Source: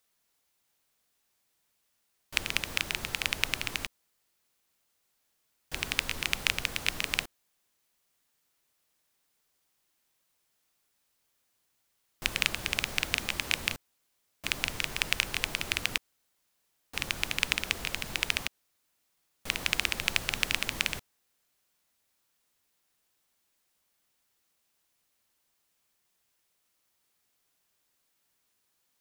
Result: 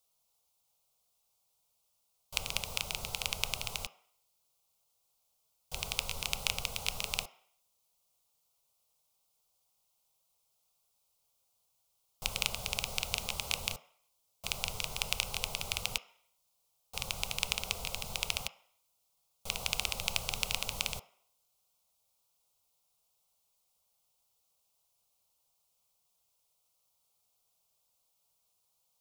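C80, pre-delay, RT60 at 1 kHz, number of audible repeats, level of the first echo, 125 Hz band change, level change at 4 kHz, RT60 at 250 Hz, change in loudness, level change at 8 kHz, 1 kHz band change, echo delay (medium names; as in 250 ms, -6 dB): 20.0 dB, 3 ms, 0.65 s, no echo, no echo, -2.0 dB, -3.5 dB, 0.45 s, -4.5 dB, -0.5 dB, -2.0 dB, no echo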